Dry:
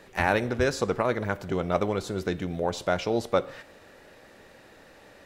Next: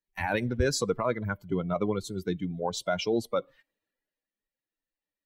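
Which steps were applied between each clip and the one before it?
expander on every frequency bin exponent 2; peak limiter -23 dBFS, peak gain reduction 10 dB; three bands expanded up and down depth 40%; trim +5 dB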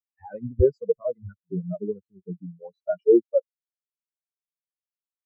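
spectral contrast expander 4:1; trim +5 dB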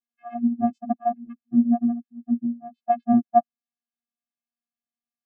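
vocoder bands 8, square 237 Hz; trim +3 dB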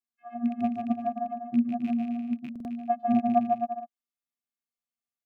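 rattle on loud lows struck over -30 dBFS, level -30 dBFS; bouncing-ball echo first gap 150 ms, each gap 0.75×, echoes 5; buffer glitch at 2.51 s, samples 2048, times 2; trim -5.5 dB

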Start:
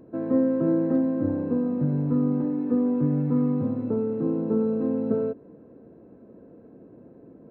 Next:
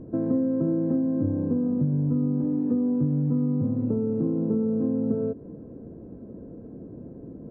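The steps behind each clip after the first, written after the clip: tilt EQ -4 dB/octave; compression 4:1, threshold -23 dBFS, peak gain reduction 11 dB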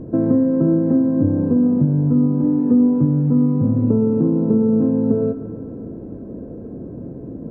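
reverberation RT60 2.6 s, pre-delay 37 ms, DRR 7.5 dB; trim +8.5 dB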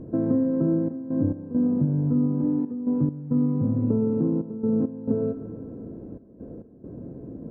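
trance gate "xxxx.x.x" 68 bpm -12 dB; trim -6.5 dB

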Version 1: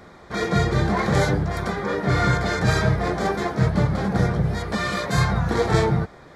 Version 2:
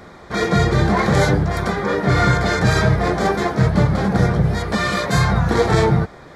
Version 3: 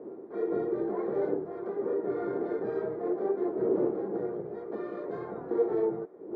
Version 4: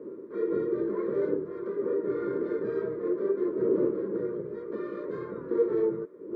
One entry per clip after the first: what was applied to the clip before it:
loudness maximiser +9.5 dB; trim -4.5 dB
wind noise 330 Hz -24 dBFS; ladder band-pass 410 Hz, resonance 65%; feedback comb 460 Hz, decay 0.28 s, harmonics odd, mix 60%; trim +3.5 dB
Butterworth band-stop 750 Hz, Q 1.9; trim +2 dB

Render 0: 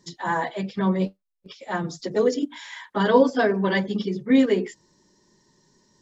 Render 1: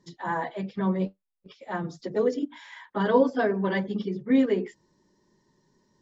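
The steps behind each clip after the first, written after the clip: treble shelf 3.8 kHz -12 dB; trim -3.5 dB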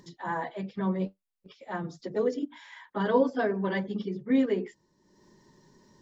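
upward compressor, threshold -45 dBFS; trim -3 dB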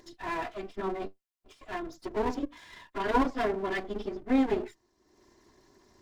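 comb filter that takes the minimum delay 2.9 ms

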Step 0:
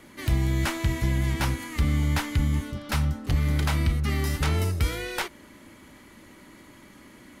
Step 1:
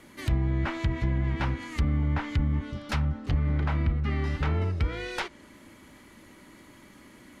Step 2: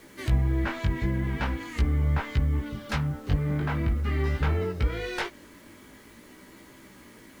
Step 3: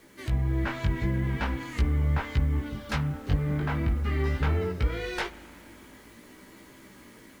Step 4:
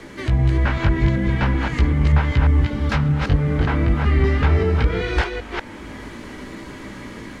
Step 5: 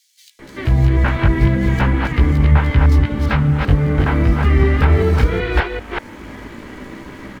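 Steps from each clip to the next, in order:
low-pass that closes with the level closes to 1.5 kHz, closed at -19 dBFS; trim -2 dB
small resonant body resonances 440/1600 Hz, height 6 dB, ringing for 35 ms; chorus 0.45 Hz, delay 15 ms, depth 5.8 ms; bit crusher 10-bit; trim +3.5 dB
level rider gain up to 4 dB; spring tank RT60 2.9 s, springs 38 ms, chirp 65 ms, DRR 16 dB; trim -4.5 dB
chunks repeated in reverse 193 ms, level -3.5 dB; distance through air 66 m; three bands compressed up and down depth 40%; trim +8 dB
median filter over 5 samples; in parallel at -4.5 dB: crossover distortion -35 dBFS; on the sum: bands offset in time highs, lows 390 ms, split 4.4 kHz

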